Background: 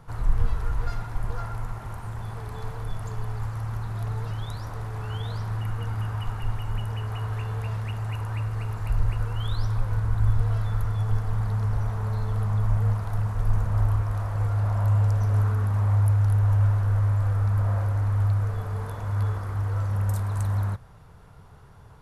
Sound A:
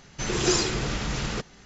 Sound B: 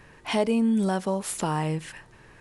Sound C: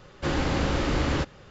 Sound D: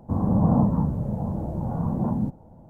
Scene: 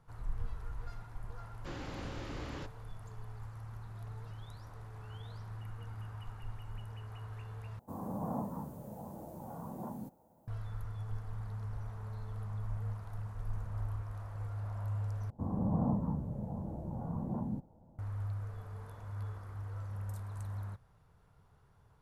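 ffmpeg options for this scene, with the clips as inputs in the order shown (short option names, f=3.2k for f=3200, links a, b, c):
-filter_complex "[4:a]asplit=2[a][b];[0:a]volume=-15.5dB[c];[a]aemphasis=mode=production:type=riaa[d];[c]asplit=3[e][f][g];[e]atrim=end=7.794[h];[d]atrim=end=2.69,asetpts=PTS-STARTPTS,volume=-10.5dB[i];[f]atrim=start=10.476:end=15.304[j];[b]atrim=end=2.69,asetpts=PTS-STARTPTS,volume=-12dB[k];[g]atrim=start=17.986[l];[3:a]atrim=end=1.5,asetpts=PTS-STARTPTS,volume=-17.5dB,afade=t=in:d=0.004:c=hsin,afade=t=out:st=1.496:d=0.004:c=hsin,adelay=1420[m];[h][i]acrossfade=d=0.004:c1=hsin:c2=hsin[n];[n][j]acrossfade=d=0.004:c1=hsin:c2=hsin[o];[o][k]acrossfade=d=0.004:c1=hsin:c2=hsin[p];[p][l]acrossfade=d=0.004:c1=hsin:c2=hsin[q];[q][m]amix=inputs=2:normalize=0"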